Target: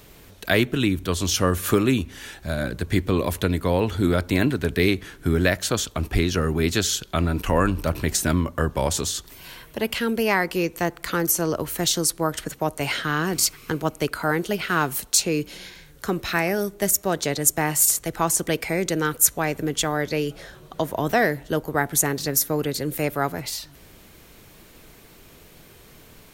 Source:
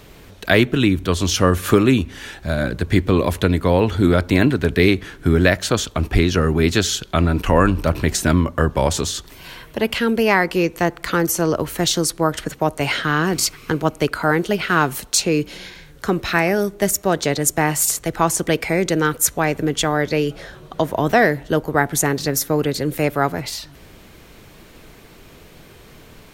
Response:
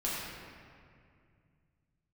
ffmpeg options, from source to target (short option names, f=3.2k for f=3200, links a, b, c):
-af "highshelf=f=7.1k:g=9.5,volume=-5.5dB"